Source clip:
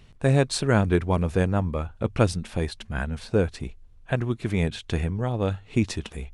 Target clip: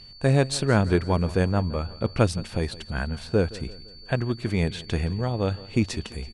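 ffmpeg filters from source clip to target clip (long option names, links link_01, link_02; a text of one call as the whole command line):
ffmpeg -i in.wav -af "aeval=exprs='val(0)+0.00562*sin(2*PI*4500*n/s)':channel_layout=same,aecho=1:1:169|338|507|676:0.112|0.0561|0.0281|0.014" out.wav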